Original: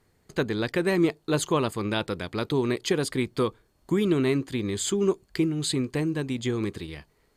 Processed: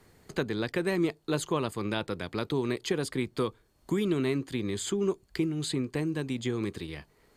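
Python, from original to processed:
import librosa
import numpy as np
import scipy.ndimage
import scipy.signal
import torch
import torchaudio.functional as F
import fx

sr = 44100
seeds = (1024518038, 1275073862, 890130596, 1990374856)

y = fx.band_squash(x, sr, depth_pct=40)
y = y * librosa.db_to_amplitude(-4.5)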